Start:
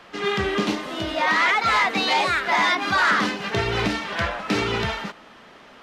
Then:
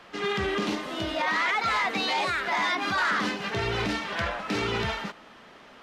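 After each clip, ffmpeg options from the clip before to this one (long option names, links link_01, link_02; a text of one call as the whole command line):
ffmpeg -i in.wav -af "alimiter=limit=-16dB:level=0:latency=1:release=16,volume=-3dB" out.wav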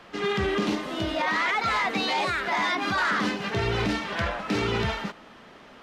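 ffmpeg -i in.wav -af "lowshelf=frequency=450:gain=4.5" out.wav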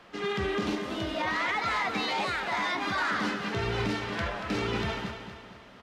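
ffmpeg -i in.wav -af "aecho=1:1:233|466|699|932|1165:0.355|0.163|0.0751|0.0345|0.0159,volume=-4.5dB" out.wav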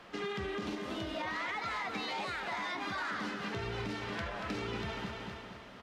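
ffmpeg -i in.wav -af "acompressor=threshold=-36dB:ratio=4" out.wav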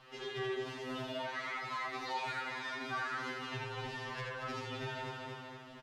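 ffmpeg -i in.wav -af "aecho=1:1:81:0.668,afftfilt=real='re*2.45*eq(mod(b,6),0)':imag='im*2.45*eq(mod(b,6),0)':win_size=2048:overlap=0.75,volume=-1.5dB" out.wav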